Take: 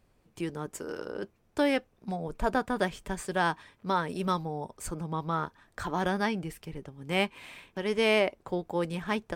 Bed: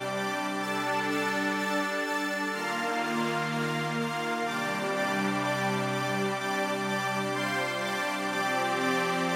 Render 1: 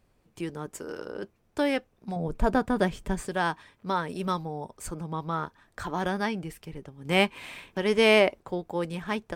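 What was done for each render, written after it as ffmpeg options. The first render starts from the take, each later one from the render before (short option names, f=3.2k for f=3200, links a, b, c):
-filter_complex "[0:a]asettb=1/sr,asplit=3[a][b][c];[a]atrim=end=2.164[d];[b]atrim=start=2.16:end=3.29,asetpts=PTS-STARTPTS,afade=t=in:d=0.004:c=qsin,afade=t=out:st=1.126:d=0.004:c=qsin,lowshelf=f=430:g=8[e];[c]atrim=start=3.286[f];[d][e]acrossfade=d=0.004:c1=hsin:c2=qsin[g];[g][f]acrossfade=d=0.004:c1=qsin:c2=hsin,asplit=3[h][i][j];[h]atrim=end=7.052[k];[i]atrim=start=7.048:end=8.402,asetpts=PTS-STARTPTS,volume=5dB[l];[j]atrim=start=8.398[m];[k][l]acrossfade=d=0.004:c1=hsin:c2=hsin[n];[n][m]acrossfade=d=0.004:c1=hsin:c2=hsin"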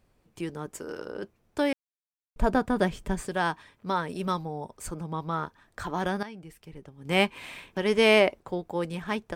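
-filter_complex "[0:a]asplit=4[a][b][c][d];[a]atrim=end=1.73,asetpts=PTS-STARTPTS,afade=t=out:st=1.726:d=0.004:c=hsin[e];[b]atrim=start=1.73:end=2.36,asetpts=PTS-STARTPTS,volume=0[f];[c]atrim=start=2.36:end=6.23,asetpts=PTS-STARTPTS,afade=t=in:d=0.004:c=hsin,afade=t=out:st=3.866:d=0.004:c=hsin:silence=0.188365[g];[d]atrim=start=6.23,asetpts=PTS-STARTPTS,afade=t=in:d=1.05:silence=0.188365[h];[e][f][g][h]concat=n=4:v=0:a=1"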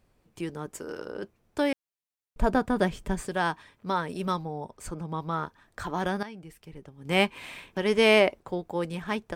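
-filter_complex "[0:a]asettb=1/sr,asplit=3[a][b][c];[a]atrim=end=4.364[d];[b]atrim=start=4.36:end=5.09,asetpts=PTS-STARTPTS,afade=t=in:d=0.004:c=qsin,afade=t=out:st=0.726:d=0.004:c=qsin,highshelf=f=8k:g=-7[e];[c]atrim=start=5.086[f];[d][e]acrossfade=d=0.004:c1=hsin:c2=qsin[g];[g][f]acrossfade=d=0.004:c1=qsin:c2=hsin"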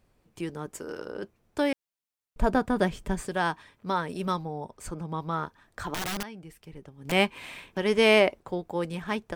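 -filter_complex "[0:a]asettb=1/sr,asplit=3[a][b][c];[a]atrim=end=5.944[d];[b]atrim=start=5.94:end=7.12,asetpts=PTS-STARTPTS,afade=t=in:d=0.004:c=qsin,afade=t=out:st=1.176:d=0.004:c=qsin,aeval=exprs='(mod(20*val(0)+1,2)-1)/20':c=same[e];[c]atrim=start=7.116[f];[d][e]acrossfade=d=0.004:c1=hsin:c2=qsin[g];[g][f]acrossfade=d=0.004:c1=qsin:c2=hsin"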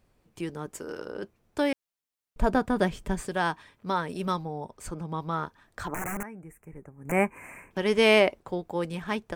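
-filter_complex "[0:a]asettb=1/sr,asplit=3[a][b][c];[a]atrim=end=5.884[d];[b]atrim=start=5.88:end=7.71,asetpts=PTS-STARTPTS,afade=t=in:d=0.004:c=qsin,afade=t=out:st=1.826:d=0.004:c=qsin,asuperstop=centerf=4000:order=8:qfactor=0.89[e];[c]atrim=start=7.706[f];[d][e]acrossfade=d=0.004:c1=hsin:c2=qsin[g];[g][f]acrossfade=d=0.004:c1=qsin:c2=hsin"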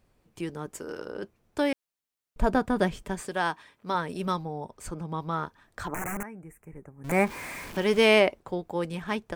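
-filter_complex "[0:a]asettb=1/sr,asplit=3[a][b][c];[a]atrim=end=3.024[d];[b]atrim=start=3.02:end=3.95,asetpts=PTS-STARTPTS,afade=t=in:d=0.004:c=qsin,afade=t=out:st=0.926:d=0.004:c=qsin,lowshelf=f=140:g=-11.5[e];[c]atrim=start=3.946[f];[d][e]acrossfade=d=0.004:c1=hsin:c2=qsin[g];[g][f]acrossfade=d=0.004:c1=qsin:c2=hsin,asettb=1/sr,asplit=3[h][i][j];[h]atrim=end=7.044[k];[i]atrim=start=7.04:end=8.06,asetpts=PTS-STARTPTS,afade=t=in:d=0.004:c=qsin,afade=t=out:st=1.016:d=0.004:c=qsin,aeval=exprs='val(0)+0.5*0.015*sgn(val(0))':c=same[l];[j]atrim=start=8.056[m];[k][l]acrossfade=d=0.004:c1=hsin:c2=qsin[n];[n][m]acrossfade=d=0.004:c1=qsin:c2=hsin"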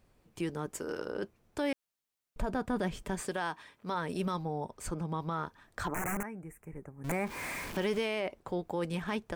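-af "acompressor=threshold=-28dB:ratio=2,alimiter=limit=-23.5dB:level=0:latency=1:release=27"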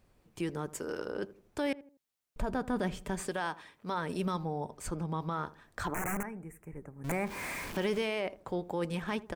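-filter_complex "[0:a]asplit=2[a][b];[b]adelay=81,lowpass=f=850:p=1,volume=-16.5dB,asplit=2[c][d];[d]adelay=81,lowpass=f=850:p=1,volume=0.4,asplit=2[e][f];[f]adelay=81,lowpass=f=850:p=1,volume=0.4[g];[a][c][e][g]amix=inputs=4:normalize=0"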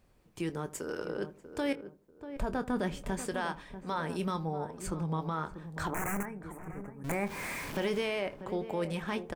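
-filter_complex "[0:a]asplit=2[a][b];[b]adelay=25,volume=-12dB[c];[a][c]amix=inputs=2:normalize=0,asplit=2[d][e];[e]adelay=641,lowpass=f=910:p=1,volume=-10dB,asplit=2[f][g];[g]adelay=641,lowpass=f=910:p=1,volume=0.29,asplit=2[h][i];[i]adelay=641,lowpass=f=910:p=1,volume=0.29[j];[f][h][j]amix=inputs=3:normalize=0[k];[d][k]amix=inputs=2:normalize=0"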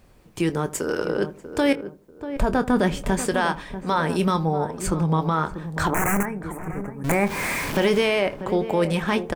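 -af "volume=12dB"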